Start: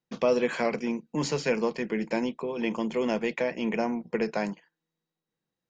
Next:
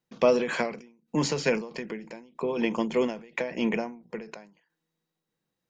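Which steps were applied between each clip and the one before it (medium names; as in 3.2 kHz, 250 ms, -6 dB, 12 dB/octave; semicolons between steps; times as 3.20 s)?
endings held to a fixed fall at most 110 dB/s; trim +3.5 dB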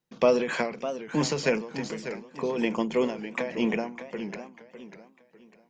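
modulated delay 600 ms, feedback 32%, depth 165 cents, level -11 dB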